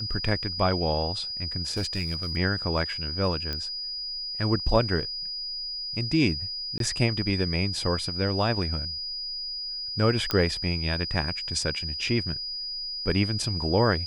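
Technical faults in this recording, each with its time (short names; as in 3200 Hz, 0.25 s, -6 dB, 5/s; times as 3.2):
tone 4900 Hz -31 dBFS
1.77–2.37 clipped -23.5 dBFS
3.53 pop -17 dBFS
6.78–6.8 gap 22 ms
10.31 pop -10 dBFS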